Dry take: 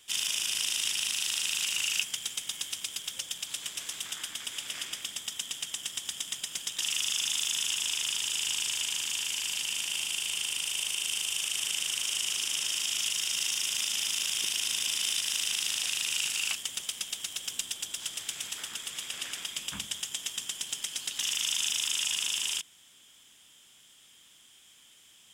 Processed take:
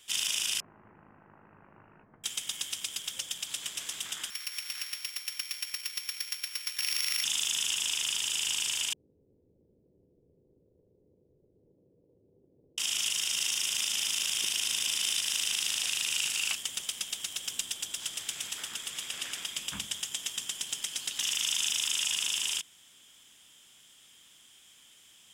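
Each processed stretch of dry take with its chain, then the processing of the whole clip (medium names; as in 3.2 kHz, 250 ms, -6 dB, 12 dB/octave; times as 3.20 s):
0.60–2.24 s: Gaussian low-pass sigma 8.3 samples + doubling 19 ms -11 dB
4.30–7.24 s: sorted samples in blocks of 8 samples + high-pass 1.4 kHz
8.93–12.78 s: Chebyshev low-pass 510 Hz, order 5 + peaking EQ 220 Hz -5 dB 0.75 oct + valve stage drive 40 dB, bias 0.65
whole clip: none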